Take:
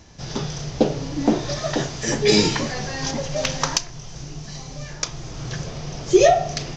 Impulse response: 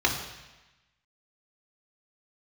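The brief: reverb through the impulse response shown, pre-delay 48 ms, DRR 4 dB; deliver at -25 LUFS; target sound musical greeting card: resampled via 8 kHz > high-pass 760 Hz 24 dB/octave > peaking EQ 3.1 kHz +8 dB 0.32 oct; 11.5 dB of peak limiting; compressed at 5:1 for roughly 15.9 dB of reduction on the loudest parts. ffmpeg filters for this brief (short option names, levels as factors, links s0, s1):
-filter_complex "[0:a]acompressor=threshold=0.0398:ratio=5,alimiter=limit=0.0668:level=0:latency=1,asplit=2[s0][s1];[1:a]atrim=start_sample=2205,adelay=48[s2];[s1][s2]afir=irnorm=-1:irlink=0,volume=0.133[s3];[s0][s3]amix=inputs=2:normalize=0,aresample=8000,aresample=44100,highpass=f=760:w=0.5412,highpass=f=760:w=1.3066,equalizer=f=3100:t=o:w=0.32:g=8,volume=4.73"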